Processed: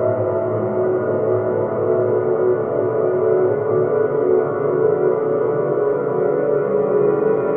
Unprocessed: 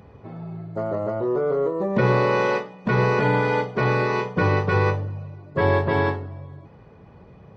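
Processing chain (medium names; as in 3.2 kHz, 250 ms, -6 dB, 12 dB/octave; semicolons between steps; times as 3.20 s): Butterworth band-stop 4.8 kHz, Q 0.9; Paulstretch 14×, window 1.00 s, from 1.11 s; trim +5.5 dB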